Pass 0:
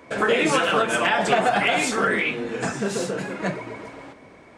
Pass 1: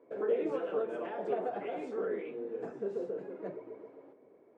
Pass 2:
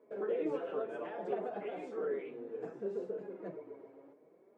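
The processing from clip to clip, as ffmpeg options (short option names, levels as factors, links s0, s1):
-af "bandpass=f=420:t=q:w=2.9:csg=0,volume=0.473"
-af "flanger=delay=4.7:depth=2.8:regen=40:speed=0.64:shape=sinusoidal,volume=1.12"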